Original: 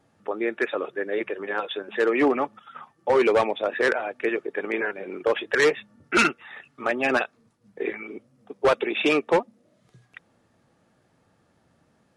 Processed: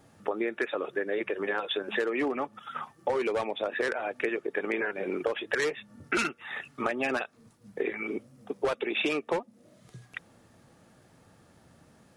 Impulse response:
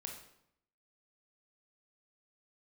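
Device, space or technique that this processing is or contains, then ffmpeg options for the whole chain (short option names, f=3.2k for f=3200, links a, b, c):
ASMR close-microphone chain: -af "lowshelf=f=160:g=3.5,acompressor=threshold=-31dB:ratio=10,highshelf=f=6.3k:g=7.5,volume=4.5dB"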